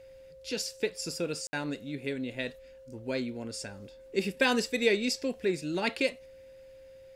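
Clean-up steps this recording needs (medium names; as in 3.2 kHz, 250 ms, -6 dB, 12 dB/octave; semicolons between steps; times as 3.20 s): band-stop 530 Hz, Q 30; room tone fill 1.47–1.53 s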